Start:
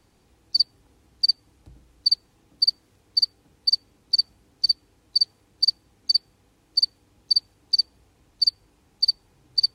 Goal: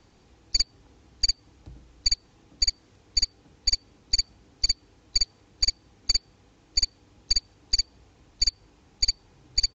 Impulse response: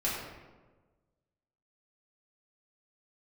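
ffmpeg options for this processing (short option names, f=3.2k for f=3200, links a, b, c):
-af "acompressor=threshold=-19dB:ratio=6,aresample=16000,aeval=exprs='clip(val(0),-1,0.0282)':c=same,aresample=44100,volume=3.5dB"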